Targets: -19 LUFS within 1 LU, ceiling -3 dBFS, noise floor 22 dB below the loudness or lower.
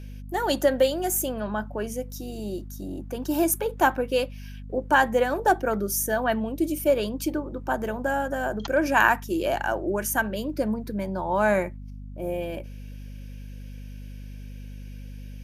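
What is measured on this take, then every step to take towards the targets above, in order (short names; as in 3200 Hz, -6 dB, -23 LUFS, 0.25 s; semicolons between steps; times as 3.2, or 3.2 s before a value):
hum 50 Hz; harmonics up to 250 Hz; hum level -36 dBFS; loudness -25.5 LUFS; peak -5.0 dBFS; loudness target -19.0 LUFS
-> de-hum 50 Hz, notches 5; gain +6.5 dB; limiter -3 dBFS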